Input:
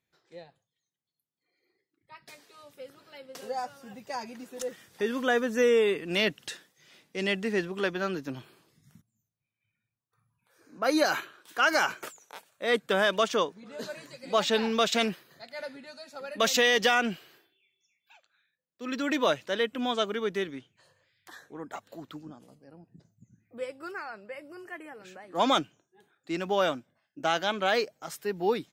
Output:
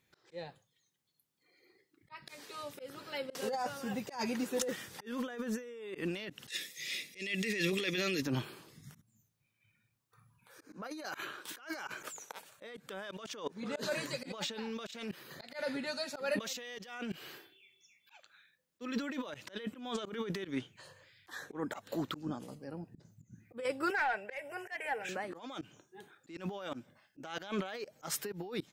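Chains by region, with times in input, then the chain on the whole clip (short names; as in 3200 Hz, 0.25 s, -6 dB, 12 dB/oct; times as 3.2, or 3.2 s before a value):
6.5–8.22 EQ curve 540 Hz 0 dB, 910 Hz -14 dB, 2100 Hz +12 dB + compressor, threshold -27 dBFS + notch comb 1500 Hz
23.9–25.09 fixed phaser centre 1200 Hz, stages 6 + overdrive pedal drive 11 dB, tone 4500 Hz, clips at -30.5 dBFS + comb 2.6 ms, depth 34%
whole clip: notch 680 Hz, Q 12; negative-ratio compressor -38 dBFS, ratio -1; auto swell 0.161 s; gain +1 dB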